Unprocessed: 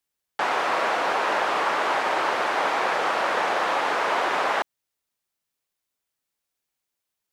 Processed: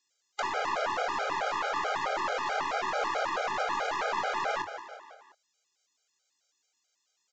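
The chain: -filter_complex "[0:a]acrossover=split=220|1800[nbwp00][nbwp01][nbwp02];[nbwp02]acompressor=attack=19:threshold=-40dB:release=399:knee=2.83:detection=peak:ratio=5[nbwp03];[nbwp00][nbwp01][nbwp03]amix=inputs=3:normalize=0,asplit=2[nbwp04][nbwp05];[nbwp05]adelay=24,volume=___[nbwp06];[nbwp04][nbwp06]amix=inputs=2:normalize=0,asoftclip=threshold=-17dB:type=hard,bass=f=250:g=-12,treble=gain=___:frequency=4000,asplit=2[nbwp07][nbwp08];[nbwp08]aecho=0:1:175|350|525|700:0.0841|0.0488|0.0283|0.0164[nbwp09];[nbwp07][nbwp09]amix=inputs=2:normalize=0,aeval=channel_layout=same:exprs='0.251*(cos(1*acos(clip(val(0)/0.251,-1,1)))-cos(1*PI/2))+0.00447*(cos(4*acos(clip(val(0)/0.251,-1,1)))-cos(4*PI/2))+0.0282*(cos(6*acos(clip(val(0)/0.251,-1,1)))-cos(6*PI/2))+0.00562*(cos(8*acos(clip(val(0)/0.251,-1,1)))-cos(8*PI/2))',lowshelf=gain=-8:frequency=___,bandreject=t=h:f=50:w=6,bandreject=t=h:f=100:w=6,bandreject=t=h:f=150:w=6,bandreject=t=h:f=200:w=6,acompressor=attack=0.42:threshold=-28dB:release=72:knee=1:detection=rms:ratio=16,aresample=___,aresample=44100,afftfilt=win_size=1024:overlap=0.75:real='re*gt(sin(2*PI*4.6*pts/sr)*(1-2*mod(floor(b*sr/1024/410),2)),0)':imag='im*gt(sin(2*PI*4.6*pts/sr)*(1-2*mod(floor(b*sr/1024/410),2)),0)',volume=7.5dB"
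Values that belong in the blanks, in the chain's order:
-10dB, 10, 160, 16000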